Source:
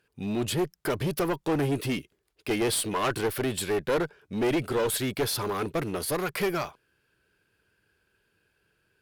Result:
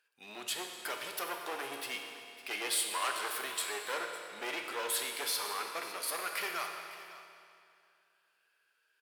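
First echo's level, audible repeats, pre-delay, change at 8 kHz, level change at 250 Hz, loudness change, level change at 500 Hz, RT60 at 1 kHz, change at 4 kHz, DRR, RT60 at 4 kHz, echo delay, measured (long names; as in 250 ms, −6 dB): −17.0 dB, 1, 9 ms, −2.5 dB, −22.0 dB, −7.5 dB, −15.0 dB, 2.5 s, −2.0 dB, 2.0 dB, 2.3 s, 556 ms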